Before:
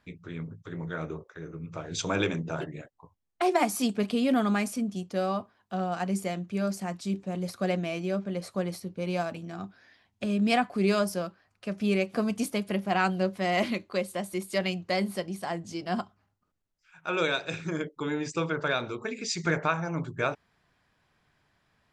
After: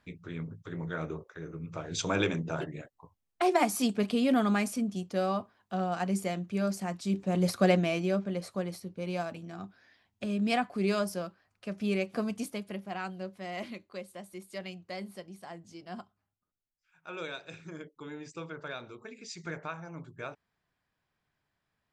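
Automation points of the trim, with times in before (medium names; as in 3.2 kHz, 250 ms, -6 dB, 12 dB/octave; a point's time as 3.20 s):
7.03 s -1 dB
7.47 s +6.5 dB
8.67 s -4 dB
12.20 s -4 dB
13.01 s -12 dB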